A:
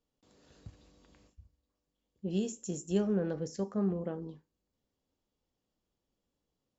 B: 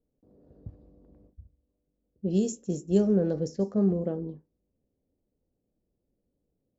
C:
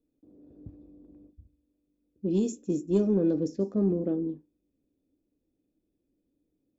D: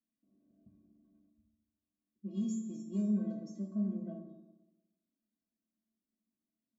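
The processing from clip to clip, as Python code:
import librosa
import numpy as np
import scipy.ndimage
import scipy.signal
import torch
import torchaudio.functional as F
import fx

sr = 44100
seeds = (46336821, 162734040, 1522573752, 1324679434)

y1 = fx.env_lowpass(x, sr, base_hz=640.0, full_db=-28.5)
y1 = fx.band_shelf(y1, sr, hz=1700.0, db=-9.5, octaves=2.3)
y1 = y1 * librosa.db_to_amplitude(7.0)
y2 = 10.0 ** (-13.5 / 20.0) * np.tanh(y1 / 10.0 ** (-13.5 / 20.0))
y2 = fx.small_body(y2, sr, hz=(300.0, 2500.0, 3500.0), ring_ms=45, db=15)
y2 = y2 * librosa.db_to_amplitude(-4.5)
y3 = fx.comb_fb(y2, sr, f0_hz=220.0, decay_s=0.23, harmonics='odd', damping=0.0, mix_pct=100)
y3 = fx.rev_fdn(y3, sr, rt60_s=1.1, lf_ratio=1.0, hf_ratio=0.55, size_ms=16.0, drr_db=1.5)
y3 = y3 * librosa.db_to_amplitude(1.5)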